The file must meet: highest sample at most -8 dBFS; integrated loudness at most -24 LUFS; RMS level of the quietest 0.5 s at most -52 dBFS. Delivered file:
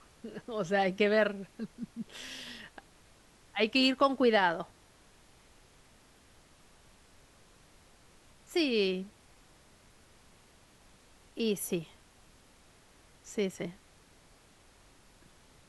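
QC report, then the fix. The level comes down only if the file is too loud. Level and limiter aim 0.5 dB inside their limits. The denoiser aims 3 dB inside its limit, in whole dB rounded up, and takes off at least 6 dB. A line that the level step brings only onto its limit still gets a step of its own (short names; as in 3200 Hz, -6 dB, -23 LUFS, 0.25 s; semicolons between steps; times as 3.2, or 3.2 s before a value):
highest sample -13.0 dBFS: OK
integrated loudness -31.0 LUFS: OK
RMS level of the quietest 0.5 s -61 dBFS: OK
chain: none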